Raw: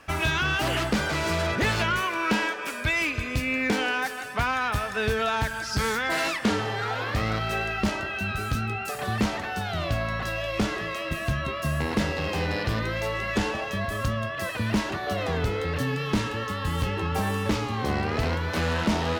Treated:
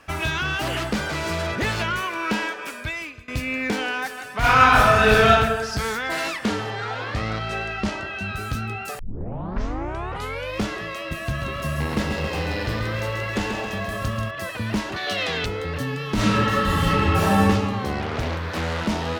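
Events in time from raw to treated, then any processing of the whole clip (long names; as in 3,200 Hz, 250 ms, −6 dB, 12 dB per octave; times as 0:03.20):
0:02.62–0:03.28: fade out, to −21.5 dB
0:04.39–0:05.28: thrown reverb, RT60 1.3 s, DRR −11.5 dB
0:06.70–0:08.33: low-pass filter 8,200 Hz
0:08.99: tape start 1.63 s
0:11.20–0:14.31: feedback echo at a low word length 136 ms, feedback 55%, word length 9 bits, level −6 dB
0:14.96–0:15.46: meter weighting curve D
0:16.14–0:17.43: thrown reverb, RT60 1.4 s, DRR −8.5 dB
0:18.00–0:18.81: highs frequency-modulated by the lows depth 0.62 ms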